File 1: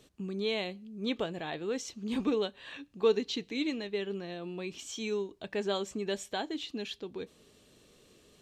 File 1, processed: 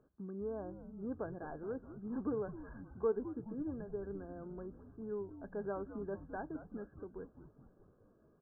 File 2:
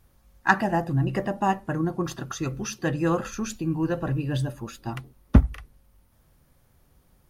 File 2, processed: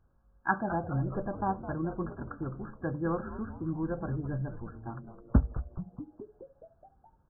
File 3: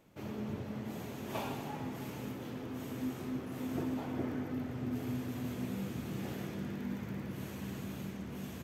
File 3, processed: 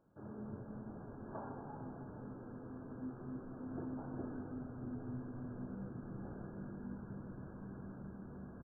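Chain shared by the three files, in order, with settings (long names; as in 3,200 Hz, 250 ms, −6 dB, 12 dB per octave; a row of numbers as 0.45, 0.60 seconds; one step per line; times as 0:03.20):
linear-phase brick-wall low-pass 1,700 Hz
on a send: echo with shifted repeats 211 ms, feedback 64%, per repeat −120 Hz, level −12 dB
on the sum: level −7.5 dB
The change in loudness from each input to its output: −8.0, −8.0, −7.5 LU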